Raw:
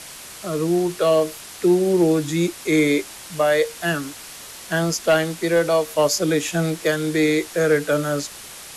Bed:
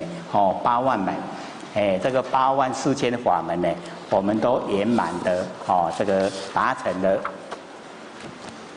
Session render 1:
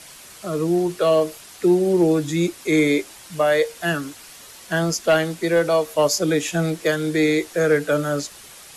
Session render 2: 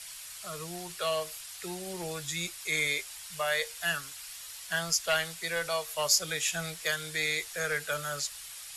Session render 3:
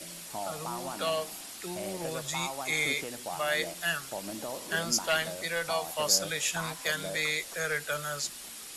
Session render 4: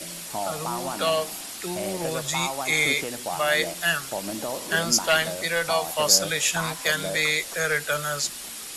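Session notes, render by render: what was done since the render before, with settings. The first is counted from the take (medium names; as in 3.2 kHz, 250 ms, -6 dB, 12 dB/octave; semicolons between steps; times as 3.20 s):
noise reduction 6 dB, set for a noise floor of -39 dBFS
amplifier tone stack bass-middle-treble 10-0-10; band-stop 6.2 kHz, Q 24
add bed -18.5 dB
trim +7 dB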